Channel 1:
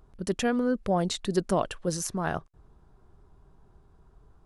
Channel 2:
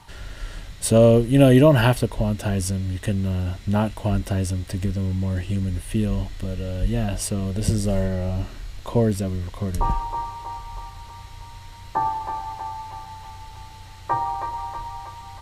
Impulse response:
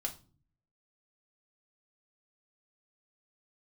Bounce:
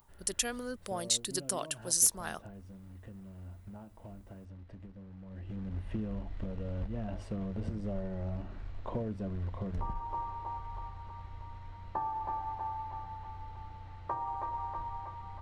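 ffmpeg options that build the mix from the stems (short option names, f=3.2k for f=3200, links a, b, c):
-filter_complex "[0:a]aemphasis=mode=production:type=bsi,volume=-11dB[a];[1:a]acompressor=threshold=-26dB:ratio=12,acrusher=bits=4:mode=log:mix=0:aa=0.000001,lowpass=1.1k,volume=-9dB,afade=t=in:st=5.25:d=0.56:silence=0.251189,asplit=2[b][c];[c]volume=-6.5dB[d];[2:a]atrim=start_sample=2205[e];[d][e]afir=irnorm=-1:irlink=0[f];[a][b][f]amix=inputs=3:normalize=0,highshelf=f=2.5k:g=11.5,asoftclip=type=hard:threshold=-15dB"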